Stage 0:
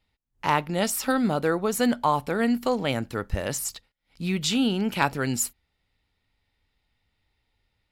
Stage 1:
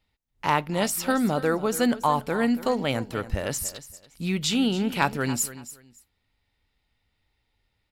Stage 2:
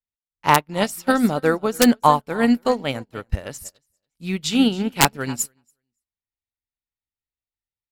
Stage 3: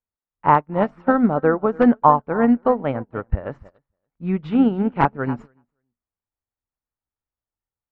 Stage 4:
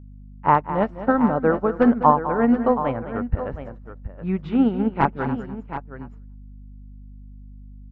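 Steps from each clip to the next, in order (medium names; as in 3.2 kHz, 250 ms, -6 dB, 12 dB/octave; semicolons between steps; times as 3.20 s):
feedback delay 283 ms, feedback 22%, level -15 dB
integer overflow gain 10 dB; upward expansion 2.5:1, over -43 dBFS; trim +9 dB
in parallel at +1 dB: compression, threshold -22 dBFS, peak gain reduction 13 dB; on the sum: four-pole ladder low-pass 1.7 kHz, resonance 20%; trim +3 dB
hum 50 Hz, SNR 19 dB; on a send: multi-tap echo 205/723 ms -12.5/-11.5 dB; on the sum: trim -2 dB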